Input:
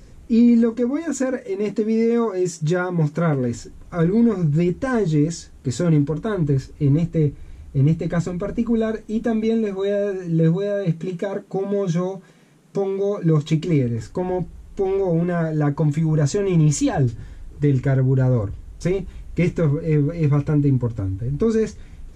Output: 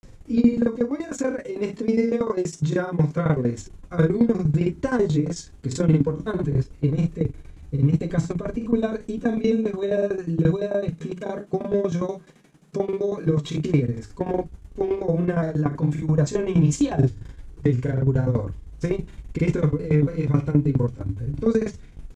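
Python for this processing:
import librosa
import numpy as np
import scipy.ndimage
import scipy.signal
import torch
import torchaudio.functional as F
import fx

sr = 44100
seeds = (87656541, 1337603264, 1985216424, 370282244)

y = fx.tremolo_shape(x, sr, shape='saw_down', hz=11.0, depth_pct=90)
y = fx.doubler(y, sr, ms=40.0, db=-12.5)
y = fx.granulator(y, sr, seeds[0], grain_ms=100.0, per_s=20.0, spray_ms=31.0, spread_st=0)
y = F.gain(torch.from_numpy(y), 3.0).numpy()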